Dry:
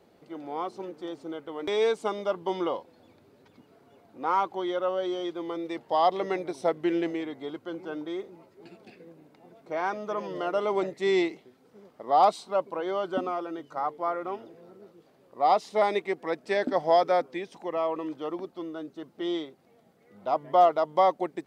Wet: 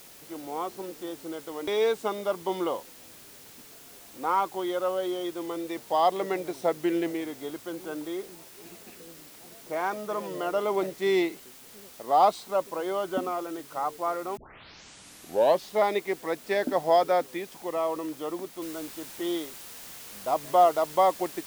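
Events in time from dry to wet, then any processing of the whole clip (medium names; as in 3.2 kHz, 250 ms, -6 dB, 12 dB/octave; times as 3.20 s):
14.37 s: tape start 1.37 s
18.62 s: noise floor step -50 dB -44 dB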